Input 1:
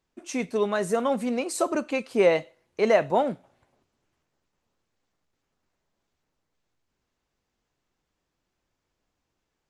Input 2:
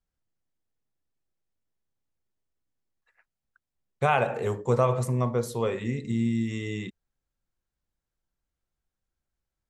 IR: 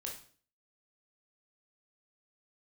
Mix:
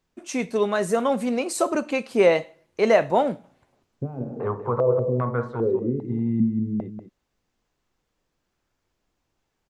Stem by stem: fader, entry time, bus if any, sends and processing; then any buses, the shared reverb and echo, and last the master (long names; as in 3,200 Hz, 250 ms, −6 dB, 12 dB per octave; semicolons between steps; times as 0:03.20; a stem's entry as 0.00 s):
+1.5 dB, 0.00 s, send −13 dB, no echo send, no processing
0.0 dB, 0.00 s, no send, echo send −10.5 dB, brickwall limiter −16 dBFS, peak gain reduction 6 dB; low-pass on a step sequencer 2.5 Hz 210–1,500 Hz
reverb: on, RT60 0.45 s, pre-delay 16 ms
echo: single-tap delay 191 ms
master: no processing